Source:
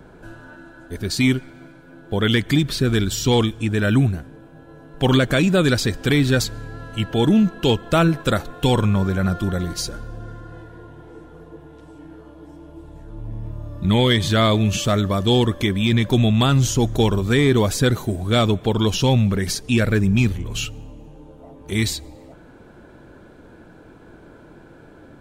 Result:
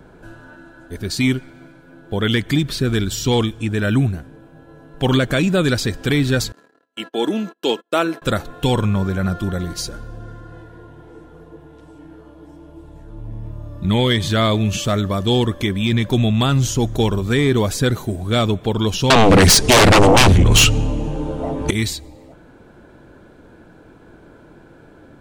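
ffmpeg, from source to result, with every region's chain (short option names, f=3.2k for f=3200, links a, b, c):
-filter_complex "[0:a]asettb=1/sr,asplit=3[a][b][c];[a]atrim=end=6.524[d];[b]atrim=start=6.52:end=8.22,asetpts=PTS-STARTPTS,afade=t=in:d=0.004:c=qsin,afade=t=out:st=1.696:d=0.004:c=qsin,agate=range=-37dB:threshold=-31dB:ratio=16:release=100:detection=peak,highpass=f=270:w=0.5412,highpass=f=270:w=1.3066[e];[c]atrim=start=8.216[f];[d][e]acrossfade=d=0.004:c1=hsin:c2=qsin[g];[g][f]acrossfade=d=0.004:c1=qsin:c2=hsin,asettb=1/sr,asplit=3[h][i][j];[h]atrim=end=19.104[k];[i]atrim=start=19.1:end=21.71,asetpts=PTS-STARTPTS,afade=t=in:d=0.004:c=qsin,afade=t=out:st=2.606:d=0.004:c=qsin,lowpass=f=10k:w=0.5412,lowpass=f=10k:w=1.3066,aeval=exprs='0.473*sin(PI/2*5.62*val(0)/0.473)':c=same[l];[j]atrim=start=21.706[m];[k][l]acrossfade=d=0.004:c1=hsin:c2=qsin[n];[n][m]acrossfade=d=0.004:c1=qsin:c2=hsin"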